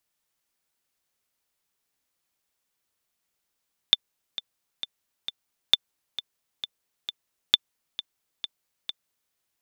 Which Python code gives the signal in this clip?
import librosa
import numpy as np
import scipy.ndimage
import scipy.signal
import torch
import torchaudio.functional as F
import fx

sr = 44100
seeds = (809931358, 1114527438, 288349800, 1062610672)

y = fx.click_track(sr, bpm=133, beats=4, bars=3, hz=3540.0, accent_db=15.0, level_db=-2.5)